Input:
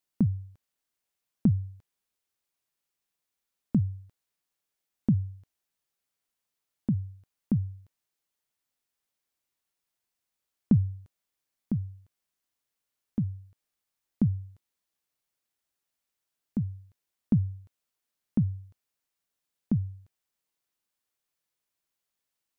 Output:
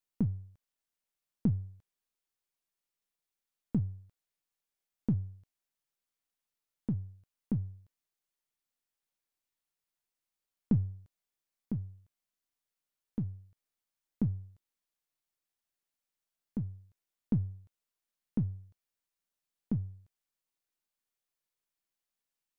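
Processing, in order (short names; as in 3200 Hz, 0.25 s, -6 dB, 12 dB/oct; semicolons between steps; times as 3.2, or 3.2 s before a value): half-wave gain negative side -3 dB; gain -4.5 dB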